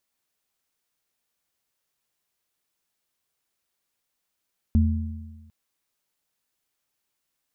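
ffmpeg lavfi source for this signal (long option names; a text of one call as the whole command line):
ffmpeg -f lavfi -i "aevalsrc='0.178*pow(10,-3*t/1.31)*sin(2*PI*83*t)+0.112*pow(10,-3*t/1.2)*sin(2*PI*221*t)':duration=0.75:sample_rate=44100" out.wav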